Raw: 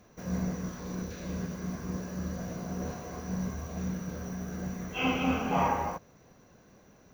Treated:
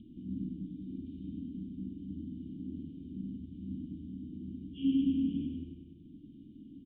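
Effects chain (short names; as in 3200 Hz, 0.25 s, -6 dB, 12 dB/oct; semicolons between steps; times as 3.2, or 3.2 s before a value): elliptic band-stop 300–3500 Hz, stop band 40 dB; small resonant body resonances 610/1100/2800 Hz, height 14 dB, ringing for 45 ms; on a send: feedback echo 0.101 s, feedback 47%, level -4 dB; on the sum: upward compressor, threshold -36 dBFS; vocal tract filter i; speed mistake 24 fps film run at 25 fps; spectral gain 2.55–3.3, 570–1900 Hz +10 dB; gain +3 dB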